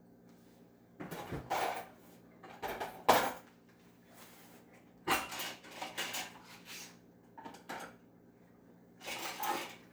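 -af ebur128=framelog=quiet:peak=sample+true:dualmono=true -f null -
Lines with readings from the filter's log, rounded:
Integrated loudness:
  I:         -34.9 LUFS
  Threshold: -47.4 LUFS
Loudness range:
  LRA:         8.8 LU
  Threshold: -56.7 LUFS
  LRA low:   -42.8 LUFS
  LRA high:  -34.1 LUFS
Sample peak:
  Peak:       -9.9 dBFS
True peak:
  Peak:       -9.9 dBFS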